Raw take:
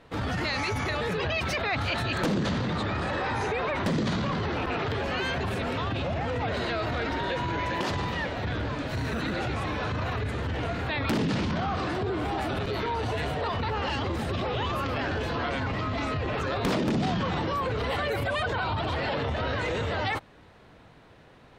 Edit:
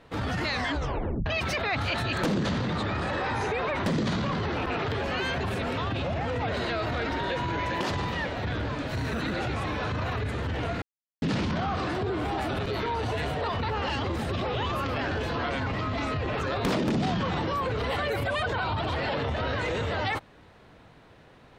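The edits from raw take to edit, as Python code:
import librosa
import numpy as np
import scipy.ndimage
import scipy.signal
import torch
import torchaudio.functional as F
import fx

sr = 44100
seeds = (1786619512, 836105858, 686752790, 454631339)

y = fx.edit(x, sr, fx.tape_stop(start_s=0.52, length_s=0.74),
    fx.silence(start_s=10.82, length_s=0.4), tone=tone)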